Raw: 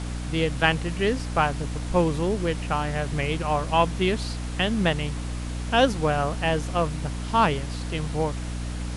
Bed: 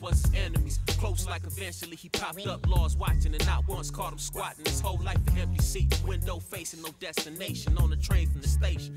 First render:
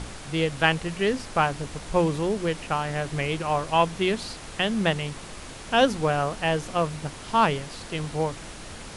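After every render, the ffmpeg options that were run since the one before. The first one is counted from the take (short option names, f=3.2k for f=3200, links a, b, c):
-af "bandreject=f=60:t=h:w=6,bandreject=f=120:t=h:w=6,bandreject=f=180:t=h:w=6,bandreject=f=240:t=h:w=6,bandreject=f=300:t=h:w=6"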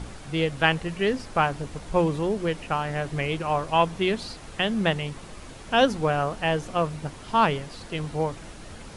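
-af "afftdn=nr=6:nf=-41"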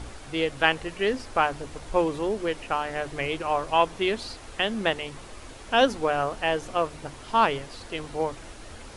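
-af "equalizer=f=170:t=o:w=0.57:g=-12,bandreject=f=50:t=h:w=6,bandreject=f=100:t=h:w=6,bandreject=f=150:t=h:w=6"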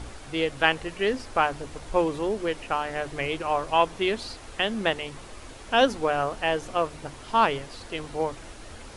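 -af anull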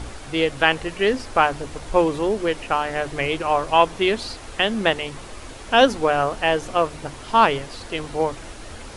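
-af "volume=5.5dB,alimiter=limit=-1dB:level=0:latency=1"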